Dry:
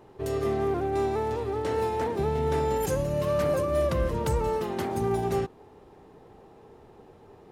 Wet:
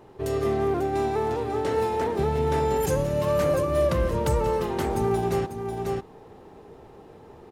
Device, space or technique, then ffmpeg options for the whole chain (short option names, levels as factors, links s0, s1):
ducked delay: -filter_complex "[0:a]asplit=3[s0][s1][s2];[s1]adelay=544,volume=0.75[s3];[s2]apad=whole_len=355432[s4];[s3][s4]sidechaincompress=threshold=0.0224:ratio=4:attack=30:release=747[s5];[s0][s5]amix=inputs=2:normalize=0,volume=1.33"